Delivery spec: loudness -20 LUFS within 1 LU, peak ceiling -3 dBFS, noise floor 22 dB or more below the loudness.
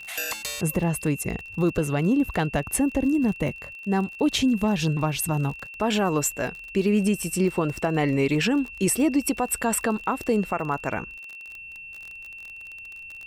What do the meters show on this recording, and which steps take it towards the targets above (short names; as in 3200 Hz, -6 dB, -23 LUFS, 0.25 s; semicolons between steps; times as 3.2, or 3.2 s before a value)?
ticks 32/s; steady tone 2700 Hz; tone level -38 dBFS; loudness -24.5 LUFS; peak -12.5 dBFS; loudness target -20.0 LUFS
-> de-click; notch 2700 Hz, Q 30; gain +4.5 dB